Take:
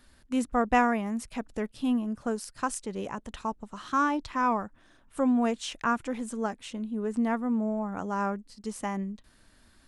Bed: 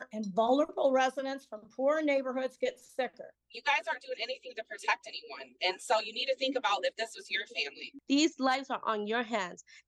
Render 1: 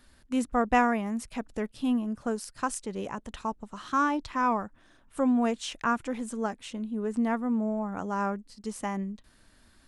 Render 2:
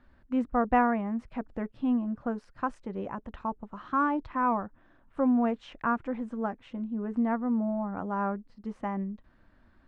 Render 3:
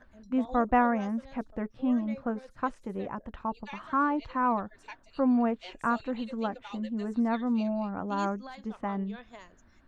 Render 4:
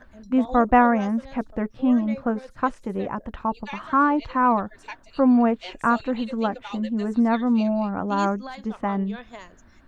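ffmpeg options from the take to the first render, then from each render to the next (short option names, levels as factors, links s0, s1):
-af anull
-af "lowpass=1600,bandreject=f=430:w=12"
-filter_complex "[1:a]volume=0.158[s0];[0:a][s0]amix=inputs=2:normalize=0"
-af "volume=2.37"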